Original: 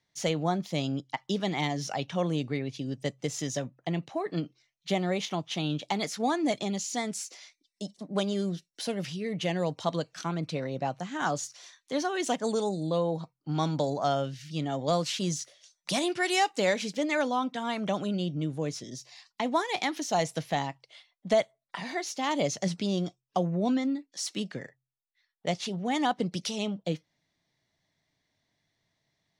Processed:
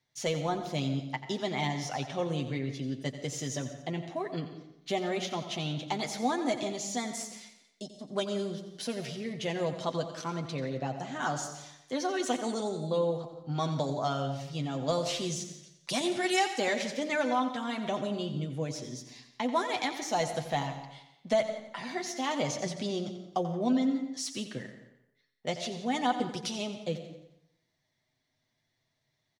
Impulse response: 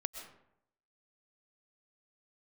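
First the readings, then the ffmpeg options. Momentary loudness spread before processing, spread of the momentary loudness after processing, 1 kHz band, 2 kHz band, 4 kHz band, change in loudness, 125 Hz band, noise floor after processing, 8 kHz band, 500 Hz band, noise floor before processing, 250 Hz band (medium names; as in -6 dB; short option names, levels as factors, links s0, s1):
9 LU, 10 LU, -1.5 dB, -2.0 dB, -1.5 dB, -2.0 dB, -2.5 dB, -79 dBFS, -1.5 dB, -2.0 dB, -83 dBFS, -2.5 dB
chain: -filter_complex "[0:a]aecho=1:1:88|176|264|352|440:0.251|0.126|0.0628|0.0314|0.0157,asplit=2[s0][s1];[1:a]atrim=start_sample=2205,adelay=8[s2];[s1][s2]afir=irnorm=-1:irlink=0,volume=0.668[s3];[s0][s3]amix=inputs=2:normalize=0,volume=0.668"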